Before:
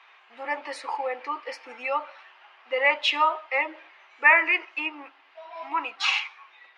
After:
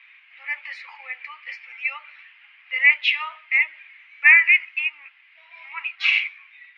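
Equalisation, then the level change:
high-pass with resonance 2,200 Hz, resonance Q 4.4
high-frequency loss of the air 180 metres
−1.0 dB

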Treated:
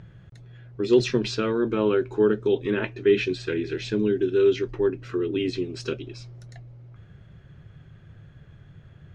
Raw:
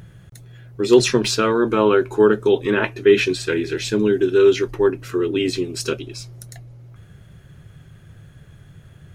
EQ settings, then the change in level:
dynamic equaliser 1,000 Hz, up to −8 dB, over −32 dBFS, Q 0.82
high-frequency loss of the air 150 metres
−3.5 dB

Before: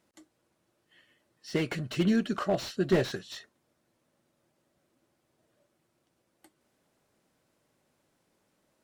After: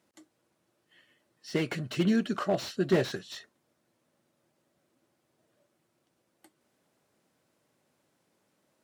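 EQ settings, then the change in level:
high-pass filter 93 Hz
0.0 dB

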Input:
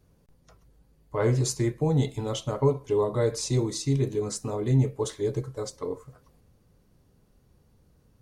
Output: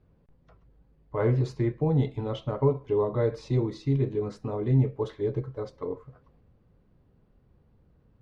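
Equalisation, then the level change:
high-frequency loss of the air 350 metres
0.0 dB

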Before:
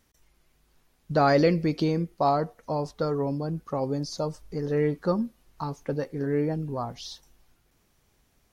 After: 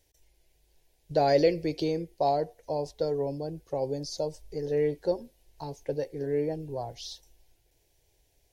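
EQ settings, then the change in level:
phaser with its sweep stopped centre 510 Hz, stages 4
0.0 dB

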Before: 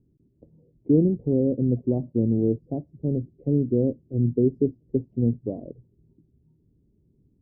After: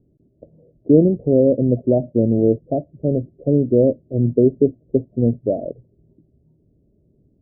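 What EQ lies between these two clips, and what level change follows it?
low-pass with resonance 630 Hz, resonance Q 5.9
+3.5 dB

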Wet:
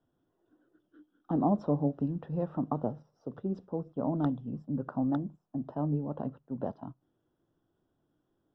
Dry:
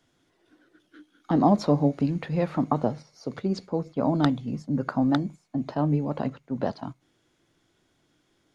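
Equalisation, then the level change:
moving average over 20 samples
−6.5 dB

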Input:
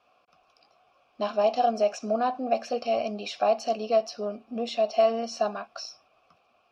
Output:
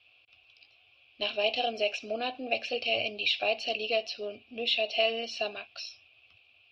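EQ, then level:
high-pass filter 69 Hz
dynamic equaliser 430 Hz, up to +6 dB, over −36 dBFS, Q 0.82
drawn EQ curve 110 Hz 0 dB, 180 Hz −27 dB, 300 Hz −14 dB, 1,200 Hz −24 dB, 2,700 Hz +6 dB, 3,900 Hz +1 dB, 6,300 Hz −18 dB
+8.0 dB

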